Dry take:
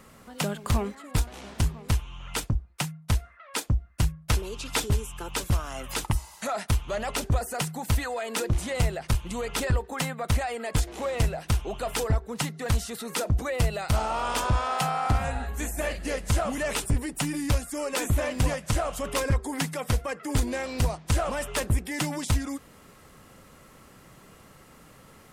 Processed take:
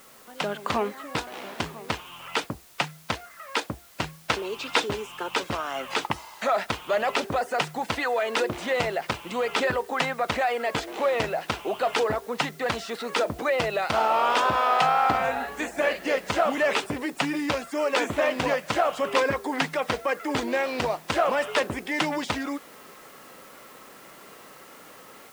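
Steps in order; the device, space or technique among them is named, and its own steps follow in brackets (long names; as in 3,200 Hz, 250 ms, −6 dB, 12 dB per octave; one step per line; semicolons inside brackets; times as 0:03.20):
dictaphone (band-pass filter 340–3,600 Hz; automatic gain control gain up to 7 dB; tape wow and flutter; white noise bed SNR 26 dB)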